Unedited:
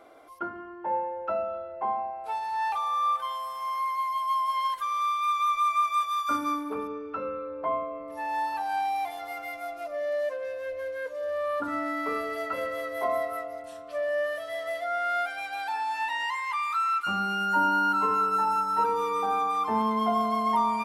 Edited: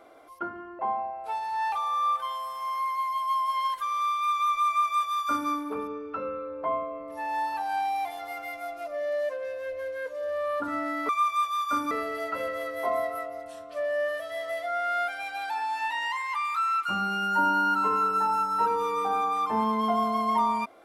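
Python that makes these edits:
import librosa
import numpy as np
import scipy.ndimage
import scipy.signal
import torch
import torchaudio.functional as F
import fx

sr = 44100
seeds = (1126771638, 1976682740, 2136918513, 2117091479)

y = fx.edit(x, sr, fx.cut(start_s=0.79, length_s=1.0),
    fx.duplicate(start_s=5.67, length_s=0.82, to_s=12.09), tone=tone)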